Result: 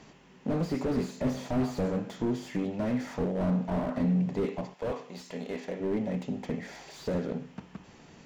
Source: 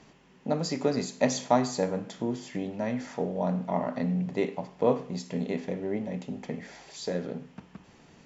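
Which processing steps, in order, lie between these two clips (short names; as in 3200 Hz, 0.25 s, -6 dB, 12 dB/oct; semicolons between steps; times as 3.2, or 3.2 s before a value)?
4.73–5.79 HPF 1300 Hz -> 500 Hz 6 dB/oct; slew limiter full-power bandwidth 15 Hz; gain +2.5 dB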